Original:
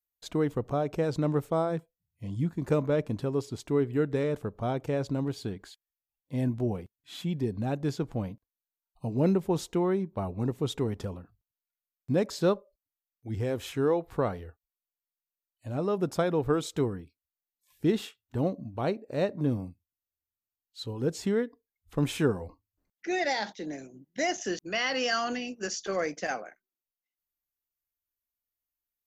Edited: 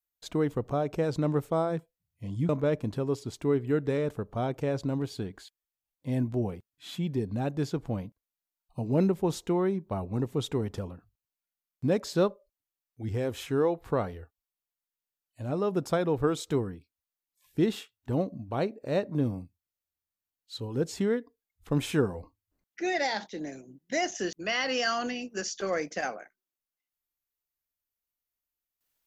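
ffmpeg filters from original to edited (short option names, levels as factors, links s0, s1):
-filter_complex "[0:a]asplit=2[s0][s1];[s0]atrim=end=2.492[s2];[s1]atrim=start=2.748[s3];[s2][s3]acrossfade=d=0.004:c1=hsin:c2=hsin"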